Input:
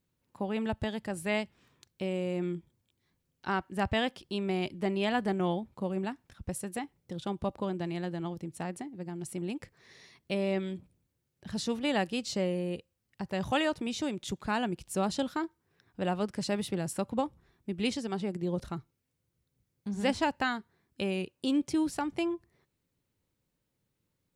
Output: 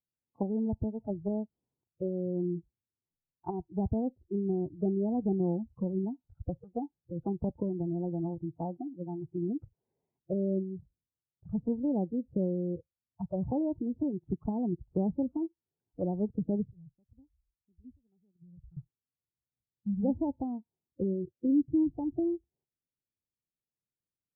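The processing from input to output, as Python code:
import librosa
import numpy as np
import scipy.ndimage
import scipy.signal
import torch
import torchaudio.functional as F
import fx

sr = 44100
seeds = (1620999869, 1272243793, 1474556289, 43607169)

y = fx.tone_stack(x, sr, knobs='10-0-1', at=(16.71, 18.77))
y = fx.noise_reduce_blind(y, sr, reduce_db=24)
y = fx.env_lowpass_down(y, sr, base_hz=370.0, full_db=-30.5)
y = scipy.signal.sosfilt(scipy.signal.ellip(4, 1.0, 50, 880.0, 'lowpass', fs=sr, output='sos'), y)
y = y * 10.0 ** (4.0 / 20.0)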